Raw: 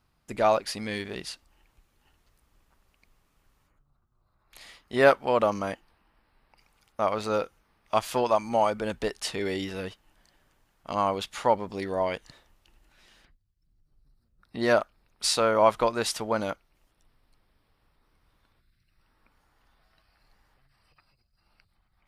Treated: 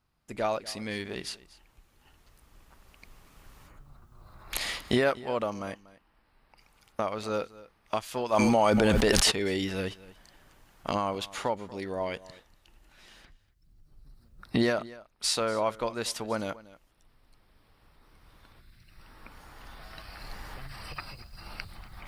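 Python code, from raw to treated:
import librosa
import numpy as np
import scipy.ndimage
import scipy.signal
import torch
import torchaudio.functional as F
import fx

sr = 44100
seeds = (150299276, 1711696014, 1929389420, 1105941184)

y = fx.recorder_agc(x, sr, target_db=-9.5, rise_db_per_s=6.2, max_gain_db=30)
y = fx.dynamic_eq(y, sr, hz=860.0, q=0.78, threshold_db=-31.0, ratio=4.0, max_db=-4)
y = y + 10.0 ** (-19.5 / 20.0) * np.pad(y, (int(239 * sr / 1000.0), 0))[:len(y)]
y = fx.env_flatten(y, sr, amount_pct=100, at=(8.32, 9.3), fade=0.02)
y = y * 10.0 ** (-5.5 / 20.0)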